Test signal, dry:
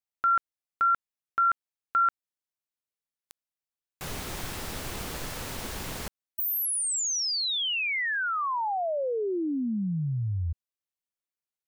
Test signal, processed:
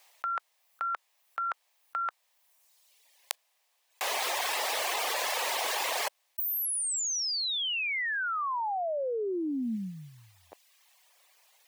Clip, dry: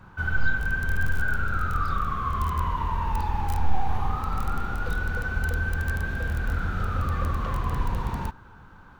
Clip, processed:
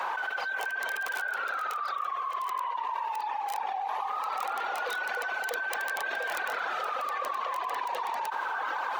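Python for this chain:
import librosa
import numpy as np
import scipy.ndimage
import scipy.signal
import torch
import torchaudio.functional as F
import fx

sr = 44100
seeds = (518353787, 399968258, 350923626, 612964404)

y = scipy.signal.sosfilt(scipy.signal.butter(4, 610.0, 'highpass', fs=sr, output='sos'), x)
y = fx.high_shelf(y, sr, hz=3900.0, db=-9.0)
y = fx.dereverb_blind(y, sr, rt60_s=1.0)
y = fx.peak_eq(y, sr, hz=1400.0, db=-10.5, octaves=0.33)
y = fx.env_flatten(y, sr, amount_pct=100)
y = y * librosa.db_to_amplitude(-1.0)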